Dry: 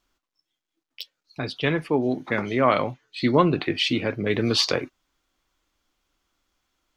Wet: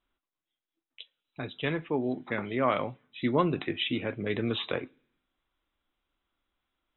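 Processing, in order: brick-wall FIR low-pass 4000 Hz; on a send: reverb RT60 0.65 s, pre-delay 3 ms, DRR 22 dB; on the sum: gain -7 dB

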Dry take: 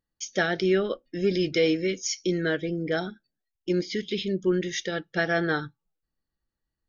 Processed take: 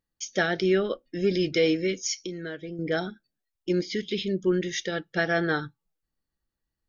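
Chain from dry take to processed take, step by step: 2.18–2.79 compressor 2.5:1, threshold -37 dBFS, peak gain reduction 11 dB

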